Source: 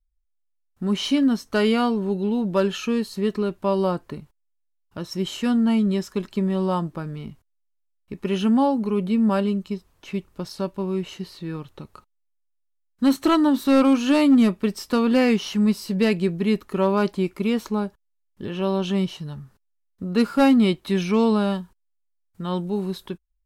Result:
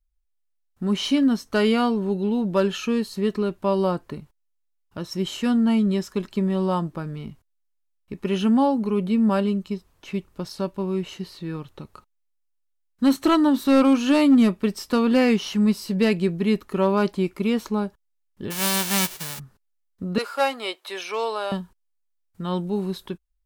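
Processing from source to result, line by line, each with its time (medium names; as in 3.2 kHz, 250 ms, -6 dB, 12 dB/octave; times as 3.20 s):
18.50–19.38 s: formants flattened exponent 0.1
20.18–21.52 s: high-pass 500 Hz 24 dB/octave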